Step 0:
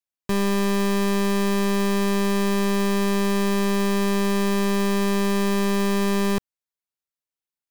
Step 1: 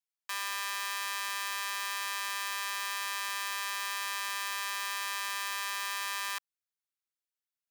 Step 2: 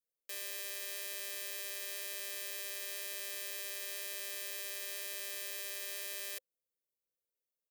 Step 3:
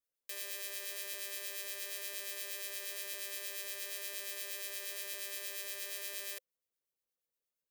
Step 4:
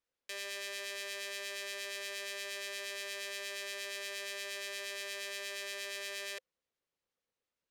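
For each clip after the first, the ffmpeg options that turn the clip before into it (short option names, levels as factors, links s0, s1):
-af "highpass=f=1100:w=0.5412,highpass=f=1100:w=1.3066,volume=0.668"
-af "firequalizer=gain_entry='entry(300,0);entry(520,13);entry(890,-28);entry(1900,-10);entry(14000,2)':delay=0.05:min_phase=1"
-filter_complex "[0:a]acrossover=split=1900[s0][s1];[s0]aeval=exprs='val(0)*(1-0.5/2+0.5/2*cos(2*PI*8.5*n/s))':c=same[s2];[s1]aeval=exprs='val(0)*(1-0.5/2-0.5/2*cos(2*PI*8.5*n/s))':c=same[s3];[s2][s3]amix=inputs=2:normalize=0,volume=1.26"
-af "adynamicsmooth=sensitivity=4:basefreq=5100,volume=2.11"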